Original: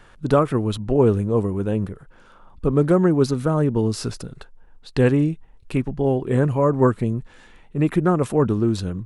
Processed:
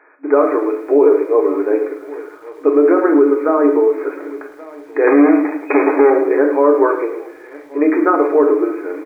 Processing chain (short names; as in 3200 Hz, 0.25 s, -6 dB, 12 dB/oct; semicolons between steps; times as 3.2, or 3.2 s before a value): on a send: echo 1.128 s -22.5 dB; on the sum: AGC gain up to 4 dB; 5.07–6.1 power-law curve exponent 0.35; flange 0.41 Hz, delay 6.3 ms, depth 1.1 ms, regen -56%; in parallel at -9.5 dB: bit-crush 6-bit; on the sum: reverb RT60 0.55 s, pre-delay 5 ms, DRR 3.5 dB; FFT band-pass 270–2500 Hz; maximiser +8.5 dB; lo-fi delay 0.108 s, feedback 35%, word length 7-bit, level -12.5 dB; gain -2 dB